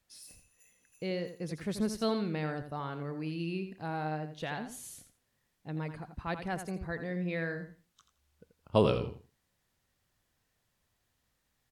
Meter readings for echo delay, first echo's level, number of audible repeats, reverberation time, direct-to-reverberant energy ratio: 84 ms, -9.5 dB, 2, no reverb, no reverb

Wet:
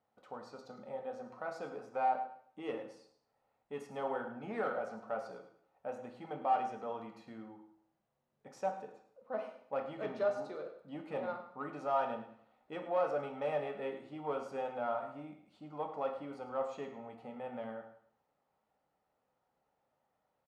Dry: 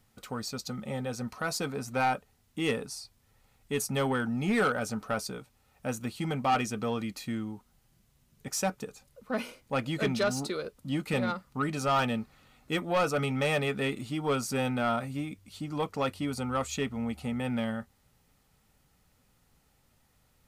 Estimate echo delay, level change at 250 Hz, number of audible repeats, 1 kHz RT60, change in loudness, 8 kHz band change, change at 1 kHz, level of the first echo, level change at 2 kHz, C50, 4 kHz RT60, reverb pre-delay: 105 ms, -15.0 dB, 2, 0.60 s, -8.0 dB, under -25 dB, -4.5 dB, -13.5 dB, -14.0 dB, 7.5 dB, 0.60 s, 5 ms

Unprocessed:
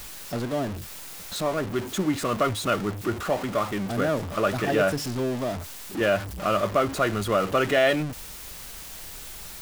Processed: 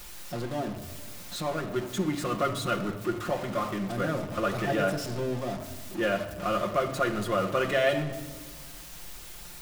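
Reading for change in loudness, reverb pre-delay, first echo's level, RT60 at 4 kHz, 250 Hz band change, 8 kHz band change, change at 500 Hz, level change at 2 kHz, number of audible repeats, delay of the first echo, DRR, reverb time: -4.0 dB, 6 ms, no echo, 0.90 s, -3.5 dB, -5.0 dB, -4.0 dB, -4.0 dB, no echo, no echo, 2.0 dB, 1.4 s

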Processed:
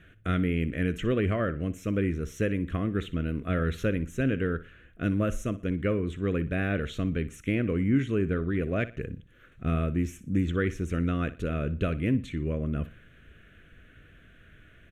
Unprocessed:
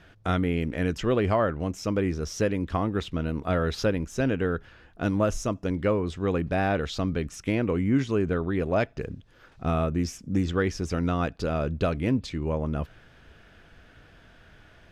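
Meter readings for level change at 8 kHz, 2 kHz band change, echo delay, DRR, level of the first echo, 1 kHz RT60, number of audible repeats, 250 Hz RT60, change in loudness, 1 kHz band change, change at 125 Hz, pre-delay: -8.0 dB, -1.0 dB, 60 ms, no reverb, -16.0 dB, no reverb, 2, no reverb, -2.0 dB, -8.0 dB, 0.0 dB, no reverb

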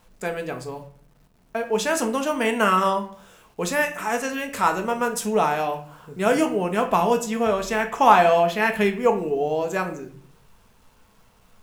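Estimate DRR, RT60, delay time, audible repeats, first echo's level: 4.5 dB, 0.50 s, no echo, no echo, no echo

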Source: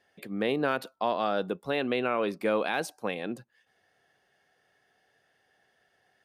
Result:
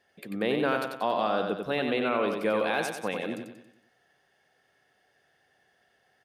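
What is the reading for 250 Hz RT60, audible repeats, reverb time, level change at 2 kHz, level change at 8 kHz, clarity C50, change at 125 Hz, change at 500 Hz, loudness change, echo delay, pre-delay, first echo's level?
no reverb, 5, no reverb, +1.5 dB, +1.5 dB, no reverb, +1.0 dB, +1.0 dB, +1.0 dB, 92 ms, no reverb, -5.0 dB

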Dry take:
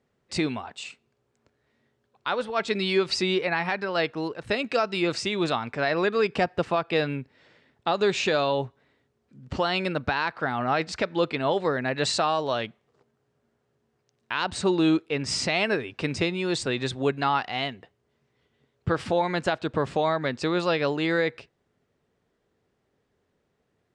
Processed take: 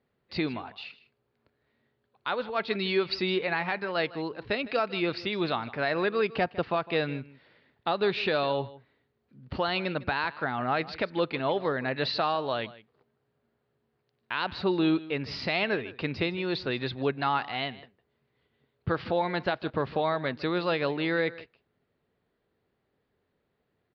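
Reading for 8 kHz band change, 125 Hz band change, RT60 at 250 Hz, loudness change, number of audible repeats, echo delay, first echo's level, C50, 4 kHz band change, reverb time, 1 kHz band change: under -25 dB, -3.5 dB, no reverb, -3.0 dB, 1, 156 ms, -18.5 dB, no reverb, -3.5 dB, no reverb, -3.0 dB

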